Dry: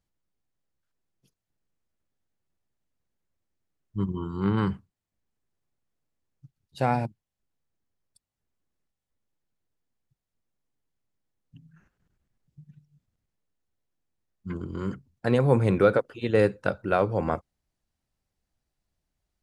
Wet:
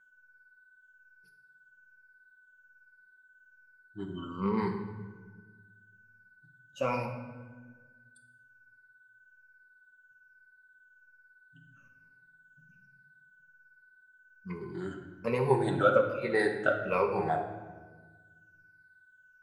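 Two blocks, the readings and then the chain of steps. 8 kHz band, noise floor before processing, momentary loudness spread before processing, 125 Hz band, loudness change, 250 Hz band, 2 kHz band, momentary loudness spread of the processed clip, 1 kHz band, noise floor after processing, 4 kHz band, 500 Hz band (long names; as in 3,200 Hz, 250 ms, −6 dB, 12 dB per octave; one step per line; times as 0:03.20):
can't be measured, below −85 dBFS, 15 LU, −9.5 dB, −5.0 dB, −6.5 dB, +0.5 dB, 20 LU, −1.5 dB, −65 dBFS, −3.0 dB, −3.5 dB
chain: rippled gain that drifts along the octave scale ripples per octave 0.85, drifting −1.2 Hz, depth 20 dB
low-shelf EQ 250 Hz −9 dB
mains-hum notches 50/100/150/200 Hz
steady tone 1,500 Hz −55 dBFS
flanger 0.83 Hz, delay 5.7 ms, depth 7.1 ms, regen −35%
rectangular room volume 1,100 cubic metres, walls mixed, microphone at 1.1 metres
level −3.5 dB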